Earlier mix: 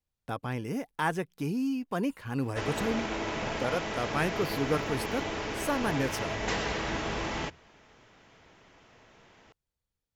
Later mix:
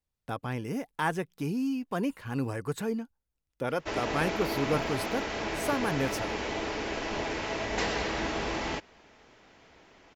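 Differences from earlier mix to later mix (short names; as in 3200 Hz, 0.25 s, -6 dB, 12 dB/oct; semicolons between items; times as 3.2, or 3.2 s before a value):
background: entry +1.30 s; reverb: off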